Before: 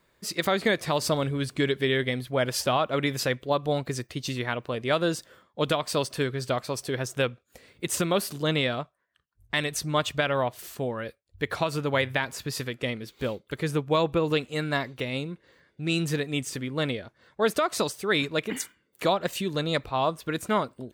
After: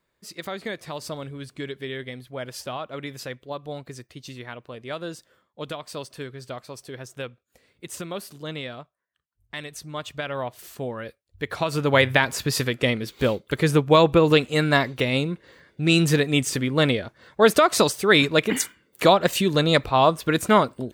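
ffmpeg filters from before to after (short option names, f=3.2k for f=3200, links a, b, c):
-af "volume=8dB,afade=t=in:st=9.96:d=0.91:silence=0.421697,afade=t=in:st=11.55:d=0.49:silence=0.375837"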